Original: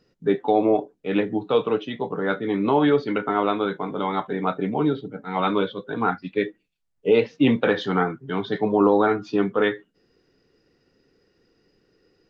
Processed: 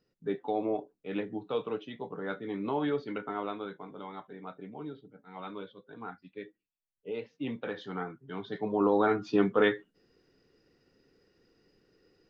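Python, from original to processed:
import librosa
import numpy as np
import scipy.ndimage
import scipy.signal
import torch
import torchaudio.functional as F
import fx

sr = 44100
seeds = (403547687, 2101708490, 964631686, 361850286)

y = fx.gain(x, sr, db=fx.line((3.2, -12.0), (4.34, -19.5), (7.12, -19.5), (8.53, -12.0), (9.3, -3.5)))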